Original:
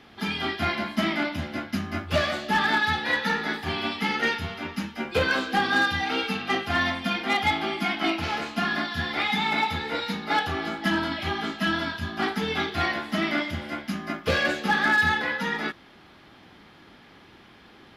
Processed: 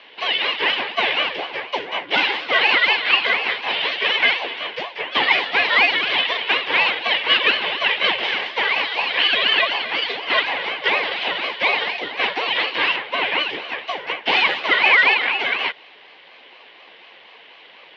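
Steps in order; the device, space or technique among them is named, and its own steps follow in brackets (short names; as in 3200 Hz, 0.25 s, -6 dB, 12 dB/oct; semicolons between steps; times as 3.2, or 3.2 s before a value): 12.96–13.4 air absorption 160 m; voice changer toy (ring modulator with a swept carrier 560 Hz, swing 65%, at 4.1 Hz; speaker cabinet 480–4100 Hz, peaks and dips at 620 Hz -4 dB, 1300 Hz -9 dB, 2100 Hz +5 dB, 3000 Hz +8 dB); gain +9 dB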